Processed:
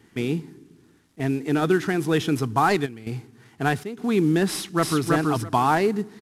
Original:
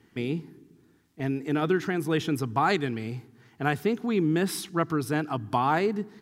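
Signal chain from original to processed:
variable-slope delta modulation 64 kbit/s
0:02.85–0:03.97: gate pattern "xxxxx...xx" 137 BPM −12 dB
0:04.49–0:05.10: delay throw 330 ms, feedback 15%, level −1.5 dB
level +4.5 dB

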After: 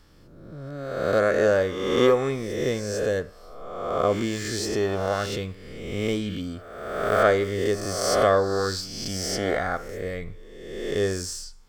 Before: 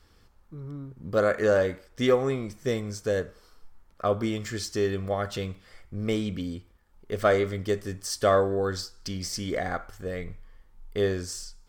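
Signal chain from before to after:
peak hold with a rise ahead of every peak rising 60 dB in 1.28 s

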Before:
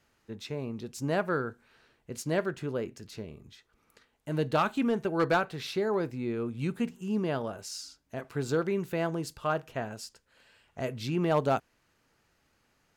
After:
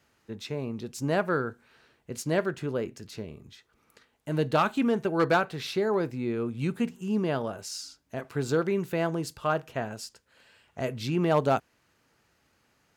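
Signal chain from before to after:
high-pass filter 54 Hz
level +2.5 dB

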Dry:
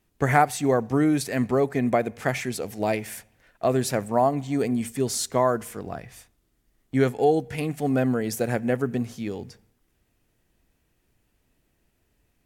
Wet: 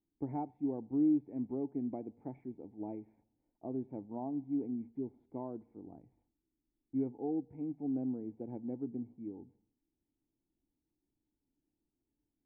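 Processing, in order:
formant resonators in series u
parametric band 2,600 Hz +4.5 dB 0.85 octaves
level −6.5 dB

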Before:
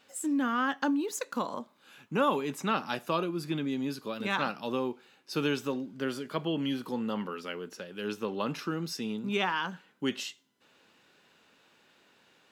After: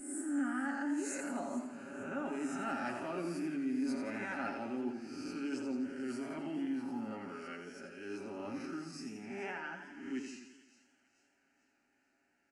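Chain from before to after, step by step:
peak hold with a rise ahead of every peak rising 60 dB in 0.73 s
source passing by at 0:02.92, 7 m/s, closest 2.7 metres
low-shelf EQ 230 Hz +8.5 dB
comb filter 7.3 ms, depth 52%
reversed playback
downward compressor 12 to 1, threshold −45 dBFS, peak gain reduction 24 dB
reversed playback
phaser with its sweep stopped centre 710 Hz, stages 8
on a send: delay with a high-pass on its return 443 ms, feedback 44%, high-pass 2,400 Hz, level −16 dB
on the sum: downsampling to 22,050 Hz
feedback echo with a swinging delay time 85 ms, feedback 59%, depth 98 cents, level −7.5 dB
level +12.5 dB

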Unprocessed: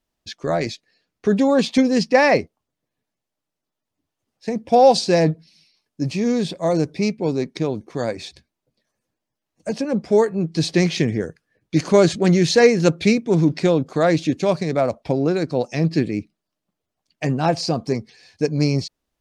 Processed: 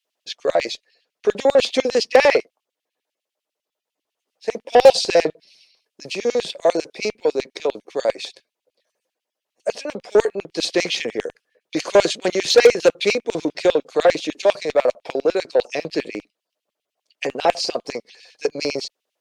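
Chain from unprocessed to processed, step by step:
auto-filter high-pass square 10 Hz 500–2,800 Hz
harmonic generator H 5 −19 dB, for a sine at 0.5 dBFS
level −3 dB

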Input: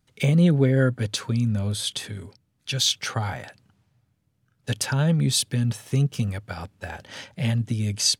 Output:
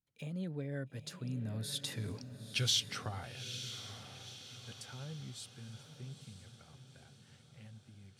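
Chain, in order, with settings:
source passing by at 0:02.28, 21 m/s, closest 1.7 metres
feedback delay with all-pass diffusion 913 ms, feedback 50%, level −10 dB
level +5.5 dB

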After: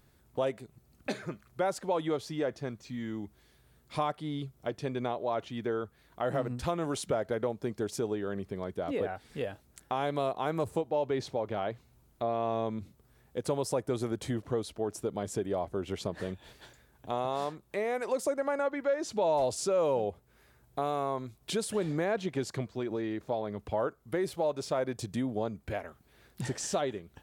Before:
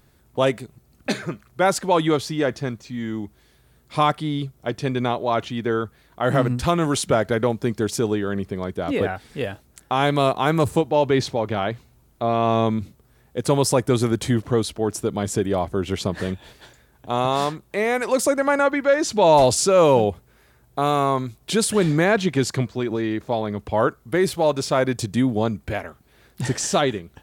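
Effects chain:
dynamic equaliser 570 Hz, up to +7 dB, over −31 dBFS, Q 0.89
downward compressor 2 to 1, threshold −29 dBFS, peak gain reduction 13 dB
level −6.5 dB

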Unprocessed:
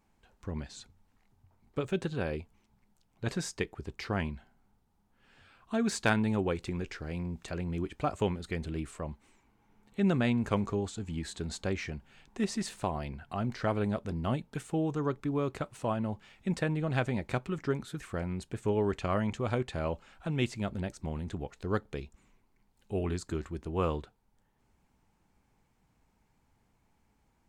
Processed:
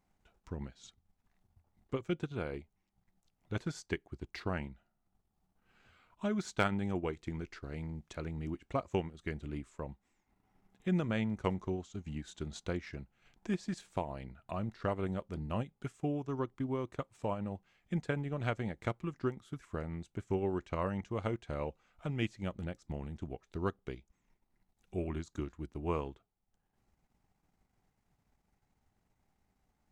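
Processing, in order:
wrong playback speed 48 kHz file played as 44.1 kHz
transient designer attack +3 dB, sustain −8 dB
level −5.5 dB

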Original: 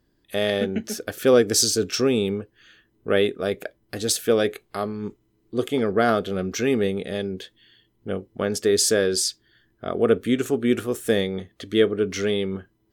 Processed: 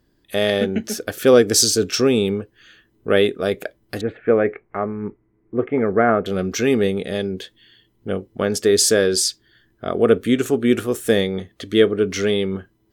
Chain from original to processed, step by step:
0:04.01–0:06.26: elliptic low-pass filter 2,200 Hz, stop band 60 dB
level +4 dB

